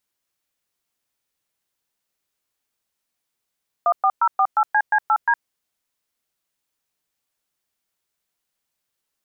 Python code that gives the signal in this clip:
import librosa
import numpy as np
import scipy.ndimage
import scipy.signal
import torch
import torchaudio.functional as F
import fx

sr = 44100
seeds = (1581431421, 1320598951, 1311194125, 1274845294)

y = fx.dtmf(sr, digits='14048CC8D', tone_ms=63, gap_ms=114, level_db=-16.5)